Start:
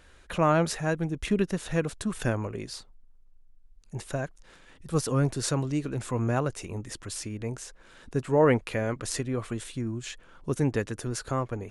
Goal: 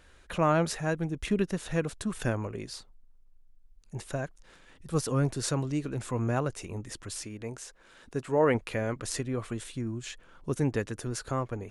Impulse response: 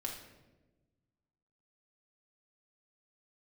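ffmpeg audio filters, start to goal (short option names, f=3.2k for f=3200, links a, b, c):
-filter_complex "[0:a]asettb=1/sr,asplit=3[a][b][c];[a]atrim=end=7.254[d];[b]atrim=start=7.25:end=8.55,asetpts=PTS-STARTPTS,afade=t=in:d=0.004:c=qsin,afade=t=out:st=1.296:d=0.004:c=qsin,lowshelf=f=180:g=-7.5[e];[c]atrim=start=8.546[f];[d][e]acrossfade=d=0.004:c1=hsin:c2=qsin[g];[g][f]acrossfade=d=0.004:c1=qsin:c2=hsin,volume=-2dB"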